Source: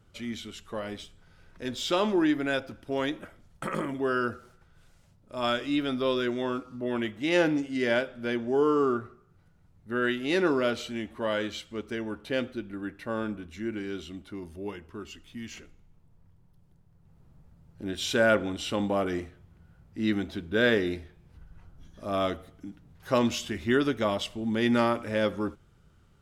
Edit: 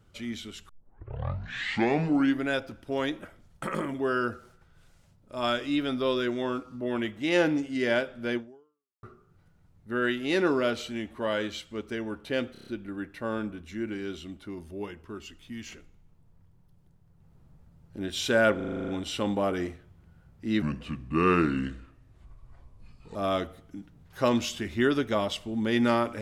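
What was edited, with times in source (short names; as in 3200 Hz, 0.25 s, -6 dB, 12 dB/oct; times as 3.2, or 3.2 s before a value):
0.69 tape start 1.77 s
8.37–9.03 fade out exponential
12.52 stutter 0.03 s, 6 plays
18.41 stutter 0.04 s, 9 plays
20.15–22.05 speed 75%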